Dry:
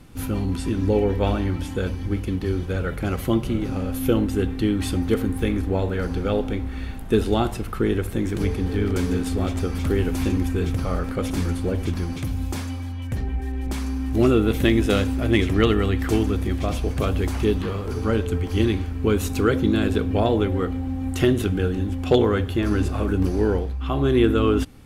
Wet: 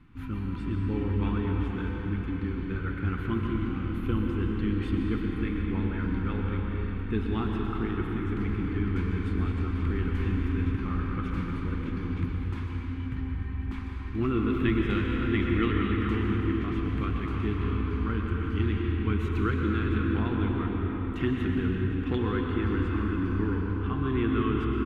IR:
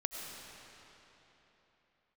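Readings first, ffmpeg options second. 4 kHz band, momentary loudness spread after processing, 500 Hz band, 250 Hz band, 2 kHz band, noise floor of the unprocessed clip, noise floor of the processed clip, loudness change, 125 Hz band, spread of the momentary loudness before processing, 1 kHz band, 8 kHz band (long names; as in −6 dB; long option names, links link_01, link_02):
−11.0 dB, 6 LU, −11.5 dB, −5.5 dB, −4.5 dB, −30 dBFS, −34 dBFS, −6.5 dB, −4.5 dB, 8 LU, −6.0 dB, below −25 dB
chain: -filter_complex "[0:a]firequalizer=gain_entry='entry(300,0);entry(590,-19);entry(1000,2);entry(2300,0);entry(5300,-18);entry(10000,-24)':delay=0.05:min_phase=1[link_01];[1:a]atrim=start_sample=2205,asetrate=35280,aresample=44100[link_02];[link_01][link_02]afir=irnorm=-1:irlink=0,volume=-8dB"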